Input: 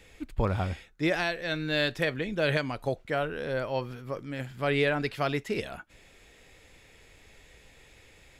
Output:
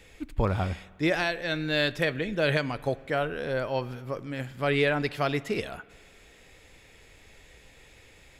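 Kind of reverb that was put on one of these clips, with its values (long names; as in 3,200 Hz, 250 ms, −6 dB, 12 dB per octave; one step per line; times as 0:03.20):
spring reverb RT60 1.7 s, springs 48 ms, chirp 50 ms, DRR 19 dB
level +1.5 dB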